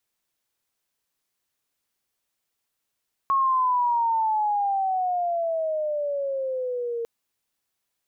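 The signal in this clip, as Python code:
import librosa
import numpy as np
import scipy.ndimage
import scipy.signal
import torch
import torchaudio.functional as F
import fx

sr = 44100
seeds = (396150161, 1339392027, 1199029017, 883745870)

y = fx.chirp(sr, length_s=3.75, from_hz=1100.0, to_hz=460.0, law='logarithmic', from_db=-18.0, to_db=-26.0)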